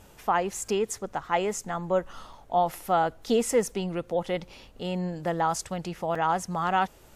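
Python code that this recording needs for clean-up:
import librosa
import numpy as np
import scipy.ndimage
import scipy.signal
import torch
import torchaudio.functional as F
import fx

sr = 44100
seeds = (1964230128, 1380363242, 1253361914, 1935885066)

y = fx.fix_interpolate(x, sr, at_s=(0.68, 2.33, 6.15), length_ms=4.1)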